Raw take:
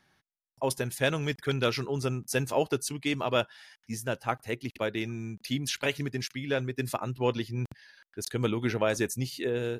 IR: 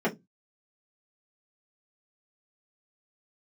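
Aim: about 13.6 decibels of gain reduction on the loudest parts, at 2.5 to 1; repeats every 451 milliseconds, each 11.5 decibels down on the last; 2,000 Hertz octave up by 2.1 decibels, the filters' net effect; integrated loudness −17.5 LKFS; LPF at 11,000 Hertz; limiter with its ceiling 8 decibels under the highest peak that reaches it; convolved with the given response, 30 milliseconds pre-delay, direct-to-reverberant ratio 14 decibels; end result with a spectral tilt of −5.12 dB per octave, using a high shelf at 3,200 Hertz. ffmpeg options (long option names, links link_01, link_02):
-filter_complex "[0:a]lowpass=11000,equalizer=frequency=2000:width_type=o:gain=4.5,highshelf=frequency=3200:gain=-5,acompressor=threshold=-43dB:ratio=2.5,alimiter=level_in=7dB:limit=-24dB:level=0:latency=1,volume=-7dB,aecho=1:1:451|902|1353:0.266|0.0718|0.0194,asplit=2[link_01][link_02];[1:a]atrim=start_sample=2205,adelay=30[link_03];[link_02][link_03]afir=irnorm=-1:irlink=0,volume=-26dB[link_04];[link_01][link_04]amix=inputs=2:normalize=0,volume=25.5dB"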